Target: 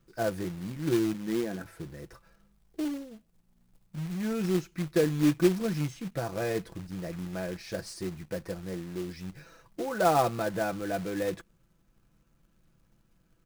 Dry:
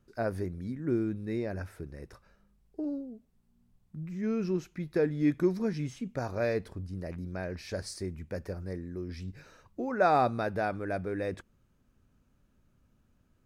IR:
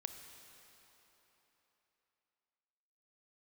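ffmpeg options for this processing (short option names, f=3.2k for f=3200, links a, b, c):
-filter_complex "[0:a]asplit=3[a][b][c];[a]afade=t=out:st=1.13:d=0.02[d];[b]highpass=f=100:w=0.5412,highpass=f=100:w=1.3066,equalizer=f=110:t=q:w=4:g=-9,equalizer=f=250:t=q:w=4:g=8,equalizer=f=590:t=q:w=4:g=-6,equalizer=f=970:t=q:w=4:g=-4,lowpass=f=2.2k:w=0.5412,lowpass=f=2.2k:w=1.3066,afade=t=in:st=1.13:d=0.02,afade=t=out:st=1.64:d=0.02[e];[c]afade=t=in:st=1.64:d=0.02[f];[d][e][f]amix=inputs=3:normalize=0,aecho=1:1:6:0.65,acrossover=split=1300[g][h];[h]asoftclip=type=tanh:threshold=-38dB[i];[g][i]amix=inputs=2:normalize=0,acrusher=bits=3:mode=log:mix=0:aa=0.000001"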